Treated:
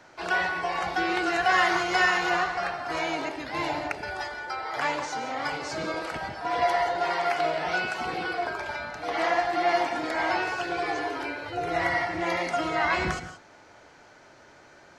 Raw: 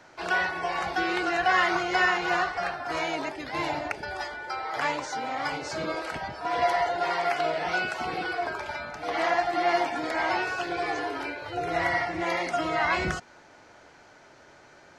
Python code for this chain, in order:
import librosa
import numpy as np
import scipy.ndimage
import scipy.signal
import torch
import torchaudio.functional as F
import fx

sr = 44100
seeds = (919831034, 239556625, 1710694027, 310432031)

y = fx.high_shelf(x, sr, hz=fx.line((1.22, 8300.0), (2.28, 5400.0)), db=9.0, at=(1.22, 2.28), fade=0.02)
y = fx.rev_gated(y, sr, seeds[0], gate_ms=200, shape='rising', drr_db=10.0)